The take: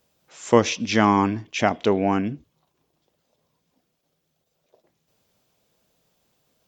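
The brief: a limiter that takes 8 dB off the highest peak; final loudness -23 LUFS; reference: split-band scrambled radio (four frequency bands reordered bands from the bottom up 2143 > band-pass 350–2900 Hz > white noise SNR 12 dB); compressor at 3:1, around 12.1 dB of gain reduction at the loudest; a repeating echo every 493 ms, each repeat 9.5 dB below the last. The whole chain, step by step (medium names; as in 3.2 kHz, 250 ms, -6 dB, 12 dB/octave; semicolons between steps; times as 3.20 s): compression 3:1, threshold -26 dBFS; peak limiter -18.5 dBFS; feedback delay 493 ms, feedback 33%, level -9.5 dB; four frequency bands reordered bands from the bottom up 2143; band-pass 350–2900 Hz; white noise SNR 12 dB; trim +8 dB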